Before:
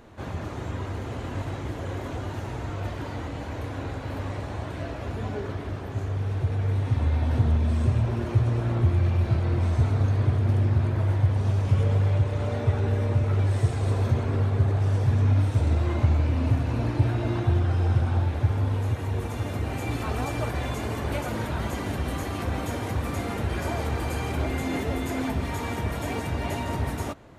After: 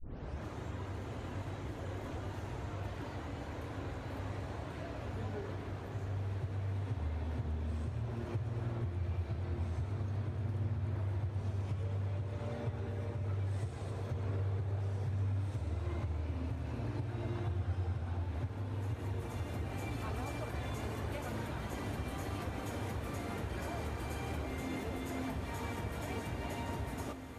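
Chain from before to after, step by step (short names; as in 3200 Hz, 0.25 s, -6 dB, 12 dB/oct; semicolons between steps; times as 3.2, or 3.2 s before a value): tape start at the beginning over 0.42 s; compressor 5:1, threshold -26 dBFS, peak gain reduction 10.5 dB; diffused feedback echo 1.983 s, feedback 49%, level -9 dB; gain -9 dB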